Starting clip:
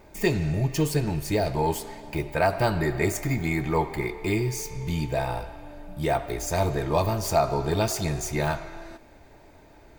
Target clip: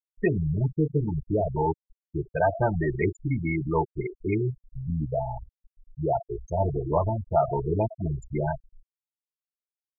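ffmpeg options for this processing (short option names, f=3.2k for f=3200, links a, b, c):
-af "aresample=16000,aresample=44100,afftfilt=real='re*gte(hypot(re,im),0.158)':imag='im*gte(hypot(re,im),0.158)':win_size=1024:overlap=0.75"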